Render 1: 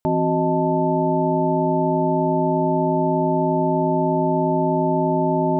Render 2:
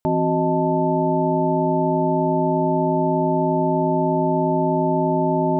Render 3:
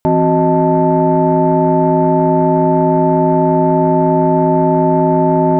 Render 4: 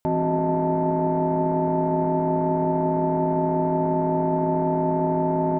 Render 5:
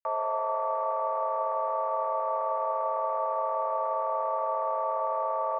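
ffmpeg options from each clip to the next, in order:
ffmpeg -i in.wav -af anull out.wav
ffmpeg -i in.wav -af "acontrast=73,volume=1.5dB" out.wav
ffmpeg -i in.wav -filter_complex "[0:a]alimiter=limit=-11.5dB:level=0:latency=1:release=17,asplit=7[link_01][link_02][link_03][link_04][link_05][link_06][link_07];[link_02]adelay=94,afreqshift=38,volume=-17.5dB[link_08];[link_03]adelay=188,afreqshift=76,volume=-21.5dB[link_09];[link_04]adelay=282,afreqshift=114,volume=-25.5dB[link_10];[link_05]adelay=376,afreqshift=152,volume=-29.5dB[link_11];[link_06]adelay=470,afreqshift=190,volume=-33.6dB[link_12];[link_07]adelay=564,afreqshift=228,volume=-37.6dB[link_13];[link_01][link_08][link_09][link_10][link_11][link_12][link_13]amix=inputs=7:normalize=0,volume=-4.5dB" out.wav
ffmpeg -i in.wav -af "aeval=exprs='sgn(val(0))*max(abs(val(0))-0.00447,0)':channel_layout=same,highpass=frequency=260:width_type=q:width=0.5412,highpass=frequency=260:width_type=q:width=1.307,lowpass=frequency=2100:width_type=q:width=0.5176,lowpass=frequency=2100:width_type=q:width=0.7071,lowpass=frequency=2100:width_type=q:width=1.932,afreqshift=270,volume=-5dB" out.wav

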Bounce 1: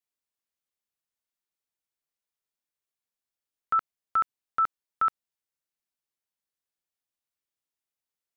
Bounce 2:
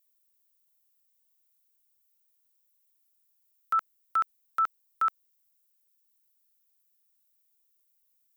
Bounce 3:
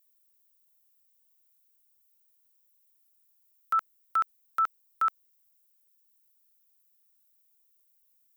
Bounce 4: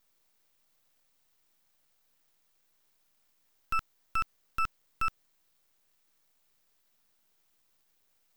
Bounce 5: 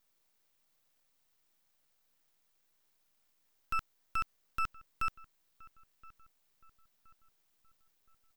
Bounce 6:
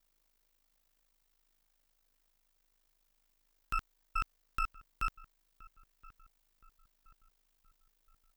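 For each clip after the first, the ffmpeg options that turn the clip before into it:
ffmpeg -i in.wav -af "aemphasis=mode=production:type=riaa,volume=-2.5dB" out.wav
ffmpeg -i in.wav -af "highshelf=frequency=8800:gain=3.5" out.wav
ffmpeg -i in.wav -af "aeval=exprs='max(val(0),0)':channel_layout=same" out.wav
ffmpeg -i in.wav -filter_complex "[0:a]asplit=2[link_01][link_02];[link_02]adelay=1021,lowpass=frequency=1500:poles=1,volume=-20dB,asplit=2[link_03][link_04];[link_04]adelay=1021,lowpass=frequency=1500:poles=1,volume=0.5,asplit=2[link_05][link_06];[link_06]adelay=1021,lowpass=frequency=1500:poles=1,volume=0.5,asplit=2[link_07][link_08];[link_08]adelay=1021,lowpass=frequency=1500:poles=1,volume=0.5[link_09];[link_01][link_03][link_05][link_07][link_09]amix=inputs=5:normalize=0,volume=-3.5dB" out.wav
ffmpeg -i in.wav -af "aeval=exprs='val(0)*sin(2*PI*26*n/s)':channel_layout=same,volume=2dB" out.wav

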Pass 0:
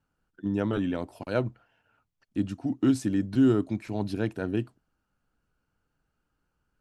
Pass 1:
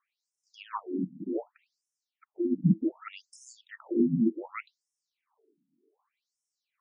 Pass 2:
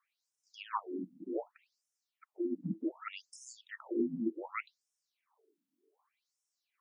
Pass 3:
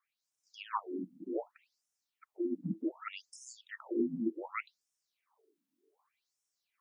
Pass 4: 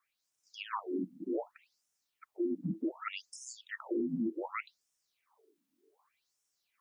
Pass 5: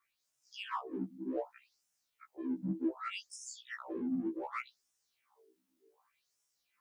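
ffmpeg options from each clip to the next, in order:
ffmpeg -i in.wav -af "afreqshift=-450,afftfilt=real='re*between(b*sr/1024,210*pow(7400/210,0.5+0.5*sin(2*PI*0.66*pts/sr))/1.41,210*pow(7400/210,0.5+0.5*sin(2*PI*0.66*pts/sr))*1.41)':imag='im*between(b*sr/1024,210*pow(7400/210,0.5+0.5*sin(2*PI*0.66*pts/sr))/1.41,210*pow(7400/210,0.5+0.5*sin(2*PI*0.66*pts/sr))*1.41)':win_size=1024:overlap=0.75,volume=9dB" out.wav
ffmpeg -i in.wav -af "highpass=440" out.wav
ffmpeg -i in.wav -af "dynaudnorm=framelen=170:gausssize=3:maxgain=4dB,volume=-3.5dB" out.wav
ffmpeg -i in.wav -af "alimiter=level_in=6.5dB:limit=-24dB:level=0:latency=1:release=34,volume=-6.5dB,volume=4dB" out.wav
ffmpeg -i in.wav -filter_complex "[0:a]asplit=2[link_01][link_02];[link_02]asoftclip=type=tanh:threshold=-39dB,volume=-7.5dB[link_03];[link_01][link_03]amix=inputs=2:normalize=0,afftfilt=real='re*1.73*eq(mod(b,3),0)':imag='im*1.73*eq(mod(b,3),0)':win_size=2048:overlap=0.75" out.wav

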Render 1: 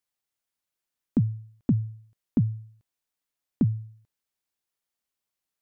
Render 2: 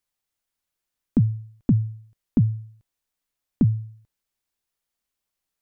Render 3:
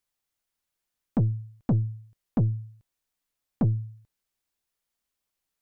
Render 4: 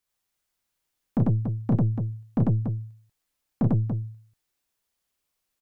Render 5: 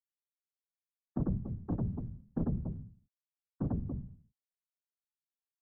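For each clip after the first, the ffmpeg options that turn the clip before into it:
ffmpeg -i in.wav -af "lowshelf=frequency=61:gain=11,volume=2.5dB" out.wav
ffmpeg -i in.wav -af "aeval=exprs='(tanh(7.94*val(0)+0.25)-tanh(0.25))/7.94':channel_layout=same" out.wav
ffmpeg -i in.wav -af "aecho=1:1:32.07|96.21|285.7:0.631|1|0.447" out.wav
ffmpeg -i in.wav -af "afftfilt=real='re*gte(hypot(re,im),0.00794)':imag='im*gte(hypot(re,im),0.00794)':win_size=1024:overlap=0.75,afftfilt=real='hypot(re,im)*cos(2*PI*random(0))':imag='hypot(re,im)*sin(2*PI*random(1))':win_size=512:overlap=0.75,volume=-5dB" out.wav

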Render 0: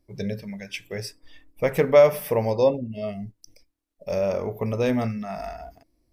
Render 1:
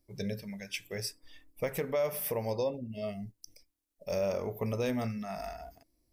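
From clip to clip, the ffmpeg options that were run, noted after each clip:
ffmpeg -i in.wav -af "alimiter=limit=-16.5dB:level=0:latency=1:release=263,highshelf=frequency=4900:gain=10,volume=-6.5dB" out.wav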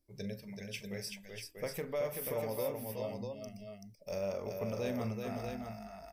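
ffmpeg -i in.wav -af "aecho=1:1:41|382|641:0.211|0.562|0.501,volume=-6dB" out.wav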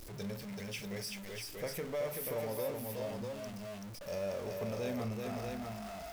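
ffmpeg -i in.wav -af "aeval=exprs='val(0)+0.5*0.0106*sgn(val(0))':channel_layout=same,volume=-3dB" out.wav

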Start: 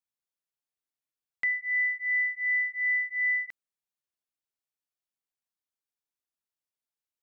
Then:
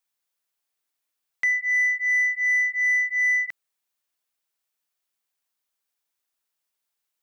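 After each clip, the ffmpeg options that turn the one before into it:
ffmpeg -i in.wav -filter_complex "[0:a]aemphasis=mode=production:type=75kf,asplit=2[link_01][link_02];[link_02]highpass=frequency=720:poles=1,volume=9dB,asoftclip=type=tanh:threshold=-20.5dB[link_03];[link_01][link_03]amix=inputs=2:normalize=0,lowpass=frequency=1800:poles=1,volume=-6dB,volume=5.5dB" out.wav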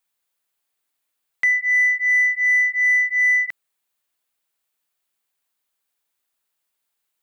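ffmpeg -i in.wav -af "equalizer=frequency=5600:width=3:gain=-4.5,volume=4.5dB" out.wav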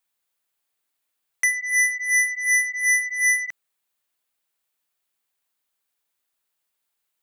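ffmpeg -i in.wav -af "aeval=exprs='0.237*(cos(1*acos(clip(val(0)/0.237,-1,1)))-cos(1*PI/2))+0.0944*(cos(3*acos(clip(val(0)/0.237,-1,1)))-cos(3*PI/2))+0.0596*(cos(5*acos(clip(val(0)/0.237,-1,1)))-cos(5*PI/2))':channel_layout=same,volume=-1.5dB" out.wav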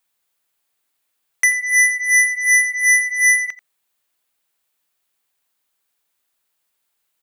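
ffmpeg -i in.wav -af "aecho=1:1:87:0.15,volume=5.5dB" out.wav

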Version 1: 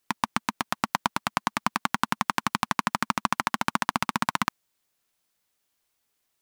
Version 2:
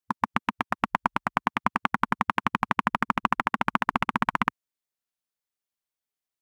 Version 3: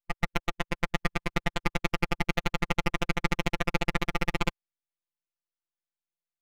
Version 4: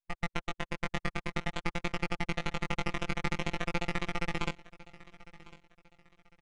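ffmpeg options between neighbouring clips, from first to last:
ffmpeg -i in.wav -af "afwtdn=0.02,volume=1.5dB" out.wav
ffmpeg -i in.wav -af "adynamicsmooth=sensitivity=2.5:basefreq=3700,aeval=exprs='abs(val(0))':channel_layout=same,afftfilt=real='hypot(re,im)*cos(PI*b)':imag='0':win_size=1024:overlap=0.75,volume=1.5dB" out.wav
ffmpeg -i in.wav -af "flanger=delay=17:depth=3.4:speed=0.5,aecho=1:1:1052|2104|3156:0.1|0.032|0.0102,aresample=22050,aresample=44100,volume=-2dB" out.wav

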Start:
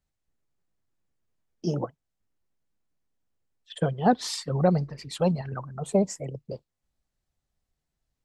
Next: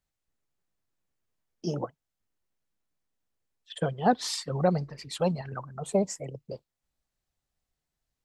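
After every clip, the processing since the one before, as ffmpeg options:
ffmpeg -i in.wav -af "lowshelf=frequency=420:gain=-5" out.wav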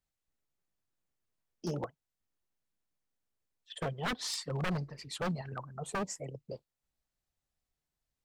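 ffmpeg -i in.wav -af "aeval=exprs='0.0668*(abs(mod(val(0)/0.0668+3,4)-2)-1)':channel_layout=same,volume=-4dB" out.wav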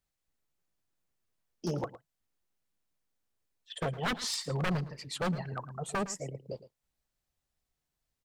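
ffmpeg -i in.wav -af "aecho=1:1:111:0.168,volume=2.5dB" out.wav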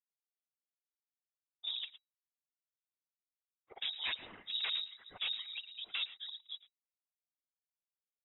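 ffmpeg -i in.wav -af "aeval=exprs='sgn(val(0))*max(abs(val(0))-0.00112,0)':channel_layout=same,afftfilt=real='hypot(re,im)*cos(2*PI*random(0))':imag='hypot(re,im)*sin(2*PI*random(1))':win_size=512:overlap=0.75,lowpass=frequency=3300:width_type=q:width=0.5098,lowpass=frequency=3300:width_type=q:width=0.6013,lowpass=frequency=3300:width_type=q:width=0.9,lowpass=frequency=3300:width_type=q:width=2.563,afreqshift=-3900" out.wav

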